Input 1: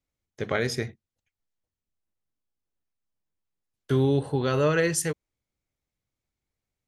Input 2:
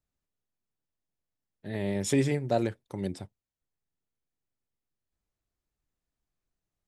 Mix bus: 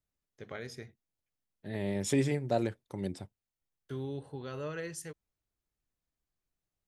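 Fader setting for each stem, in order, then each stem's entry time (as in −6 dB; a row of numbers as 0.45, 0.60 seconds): −16.0, −3.0 decibels; 0.00, 0.00 seconds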